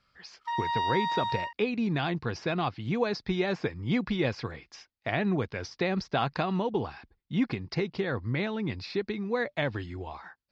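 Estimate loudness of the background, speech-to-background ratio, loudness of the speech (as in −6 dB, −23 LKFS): −31.0 LKFS, 0.0 dB, −31.0 LKFS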